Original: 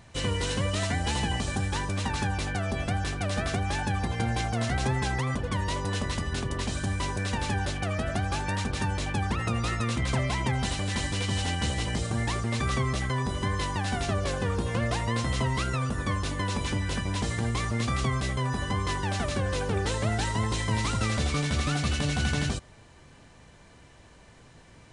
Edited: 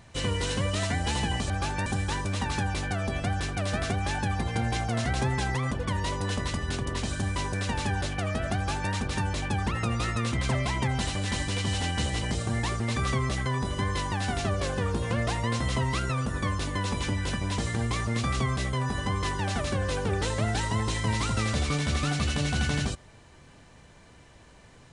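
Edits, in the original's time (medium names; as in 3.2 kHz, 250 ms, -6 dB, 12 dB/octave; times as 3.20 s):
8.20–8.56 s: copy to 1.50 s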